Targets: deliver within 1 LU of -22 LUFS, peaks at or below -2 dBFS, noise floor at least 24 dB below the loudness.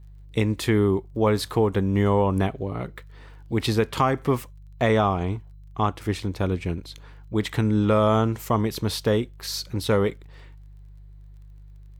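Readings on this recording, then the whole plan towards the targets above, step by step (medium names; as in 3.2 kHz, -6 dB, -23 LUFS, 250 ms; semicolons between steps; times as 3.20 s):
tick rate 21 per s; hum 50 Hz; highest harmonic 150 Hz; hum level -43 dBFS; loudness -24.0 LUFS; peak level -9.0 dBFS; loudness target -22.0 LUFS
-> de-click; de-hum 50 Hz, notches 3; trim +2 dB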